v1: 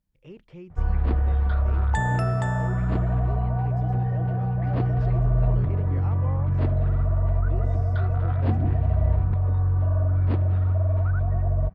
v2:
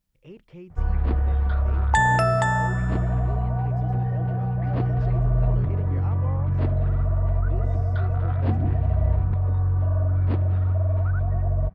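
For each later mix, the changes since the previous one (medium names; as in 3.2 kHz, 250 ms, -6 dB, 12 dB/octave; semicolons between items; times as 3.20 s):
second sound +9.0 dB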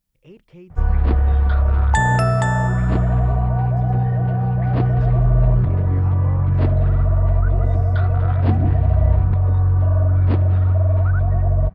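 first sound +6.0 dB; master: add treble shelf 6.1 kHz +5 dB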